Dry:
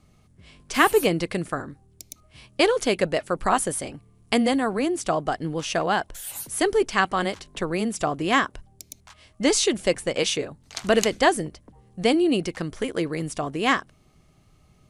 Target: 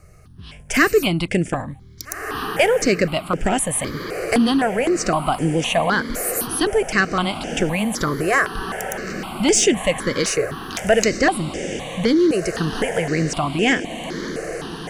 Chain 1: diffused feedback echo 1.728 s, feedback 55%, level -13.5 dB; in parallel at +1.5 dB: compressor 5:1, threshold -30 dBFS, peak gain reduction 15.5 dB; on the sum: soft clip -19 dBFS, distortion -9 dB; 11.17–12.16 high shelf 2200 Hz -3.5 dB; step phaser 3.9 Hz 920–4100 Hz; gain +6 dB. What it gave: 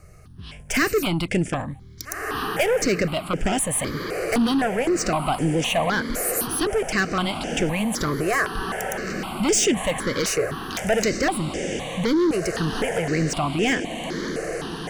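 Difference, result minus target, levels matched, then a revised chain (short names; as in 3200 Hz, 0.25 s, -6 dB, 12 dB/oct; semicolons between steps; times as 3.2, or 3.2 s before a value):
soft clip: distortion +11 dB
diffused feedback echo 1.728 s, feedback 55%, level -13.5 dB; in parallel at +1.5 dB: compressor 5:1, threshold -30 dBFS, peak gain reduction 15.5 dB; on the sum: soft clip -8.5 dBFS, distortion -19 dB; 11.17–12.16 high shelf 2200 Hz -3.5 dB; step phaser 3.9 Hz 920–4100 Hz; gain +6 dB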